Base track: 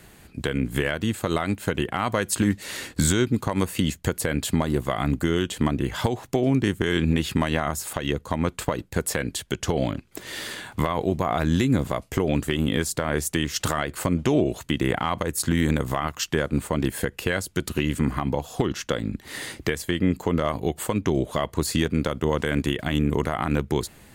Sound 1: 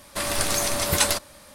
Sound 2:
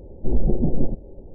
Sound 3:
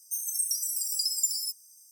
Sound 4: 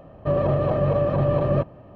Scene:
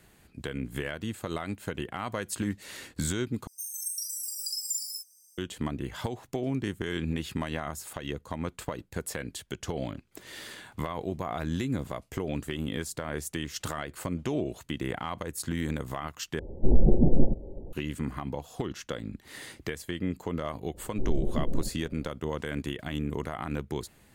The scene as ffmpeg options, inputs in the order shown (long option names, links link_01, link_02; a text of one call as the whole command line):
ffmpeg -i bed.wav -i cue0.wav -i cue1.wav -i cue2.wav -filter_complex "[2:a]asplit=2[link_01][link_02];[0:a]volume=-9.5dB[link_03];[3:a]asplit=2[link_04][link_05];[link_05]adelay=41,volume=-3dB[link_06];[link_04][link_06]amix=inputs=2:normalize=0[link_07];[link_03]asplit=3[link_08][link_09][link_10];[link_08]atrim=end=3.474[link_11];[link_07]atrim=end=1.91,asetpts=PTS-STARTPTS,volume=-6.5dB[link_12];[link_09]atrim=start=5.376:end=16.394[link_13];[link_01]atrim=end=1.34[link_14];[link_10]atrim=start=17.726[link_15];[link_02]atrim=end=1.34,asetpts=PTS-STARTPTS,volume=-9dB,afade=type=in:duration=0.004:curve=hsin,afade=type=out:start_time=1.336:duration=0.004:curve=hsin,adelay=20740[link_16];[link_11][link_12]acrossfade=duration=0.004:curve1=hsin:curve2=hsin[link_17];[link_17][link_13]acrossfade=duration=0.004:curve1=hsin:curve2=hsin[link_18];[link_18][link_14]acrossfade=duration=0.004:curve1=hsin:curve2=hsin[link_19];[link_19][link_15]acrossfade=duration=0.004:curve1=hsin:curve2=hsin[link_20];[link_20][link_16]amix=inputs=2:normalize=0" out.wav